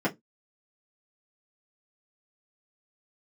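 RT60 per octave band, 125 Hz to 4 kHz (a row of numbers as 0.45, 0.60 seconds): 0.25, 0.20, 0.15, 0.15, 0.10, 0.10 seconds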